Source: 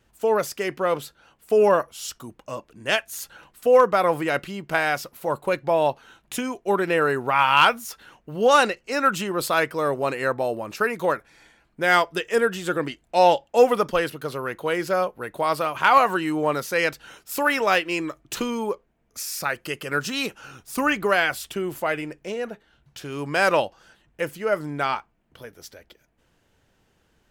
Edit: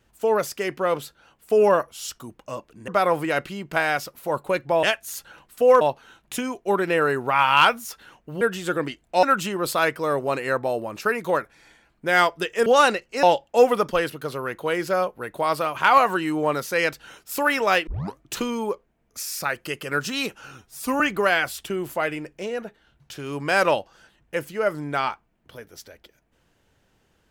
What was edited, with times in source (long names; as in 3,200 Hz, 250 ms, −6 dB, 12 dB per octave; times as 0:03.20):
0:02.88–0:03.86: move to 0:05.81
0:08.41–0:08.98: swap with 0:12.41–0:13.23
0:17.87: tape start 0.31 s
0:20.58–0:20.86: time-stretch 1.5×